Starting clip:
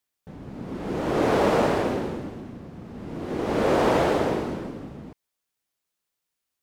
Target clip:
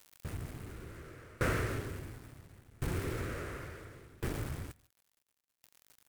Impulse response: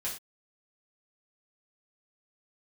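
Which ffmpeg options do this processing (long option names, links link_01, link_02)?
-filter_complex "[0:a]aeval=exprs='val(0)+0.5*0.0158*sgn(val(0))':channel_layout=same,aemphasis=mode=production:type=cd,acrossover=split=3500[link_01][link_02];[link_02]acompressor=threshold=-51dB:ratio=4:attack=1:release=60[link_03];[link_01][link_03]amix=inputs=2:normalize=0,firequalizer=gain_entry='entry(100,0);entry(180,-18);entry(350,-14);entry(750,-29);entry(1200,-9);entry(2000,-9);entry(3300,-22);entry(7800,0);entry(11000,-4)':delay=0.05:min_phase=1,acompressor=threshold=-38dB:ratio=2.5,aeval=exprs='val(0)*gte(abs(val(0)),0.00501)':channel_layout=same,asplit=2[link_04][link_05];[1:a]atrim=start_sample=2205,atrim=end_sample=3087,adelay=135[link_06];[link_05][link_06]afir=irnorm=-1:irlink=0,volume=-23.5dB[link_07];[link_04][link_07]amix=inputs=2:normalize=0,asetrate=48000,aresample=44100,aeval=exprs='val(0)*pow(10,-27*if(lt(mod(0.71*n/s,1),2*abs(0.71)/1000),1-mod(0.71*n/s,1)/(2*abs(0.71)/1000),(mod(0.71*n/s,1)-2*abs(0.71)/1000)/(1-2*abs(0.71)/1000))/20)':channel_layout=same,volume=10.5dB"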